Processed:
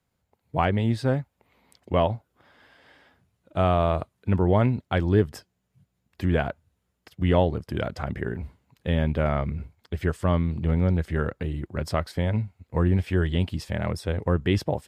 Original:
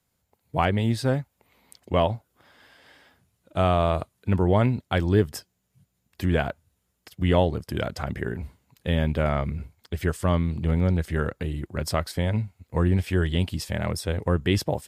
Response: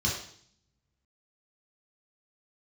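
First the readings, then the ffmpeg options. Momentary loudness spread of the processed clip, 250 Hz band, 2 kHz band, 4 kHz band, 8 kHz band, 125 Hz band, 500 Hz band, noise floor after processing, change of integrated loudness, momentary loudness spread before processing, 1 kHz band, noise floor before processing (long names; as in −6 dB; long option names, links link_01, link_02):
10 LU, 0.0 dB, −1.5 dB, −4.0 dB, can't be measured, 0.0 dB, 0.0 dB, −76 dBFS, 0.0 dB, 11 LU, −0.5 dB, −75 dBFS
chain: -af "highshelf=frequency=4800:gain=-11"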